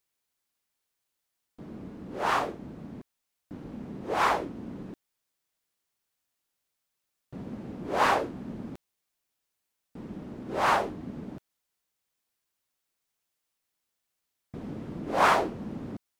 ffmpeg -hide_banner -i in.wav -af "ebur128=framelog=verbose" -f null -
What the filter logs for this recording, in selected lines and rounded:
Integrated loudness:
  I:         -29.2 LUFS
  Threshold: -41.3 LUFS
Loudness range:
  LRA:        15.2 LU
  Threshold: -54.2 LUFS
  LRA low:   -46.6 LUFS
  LRA high:  -31.4 LUFS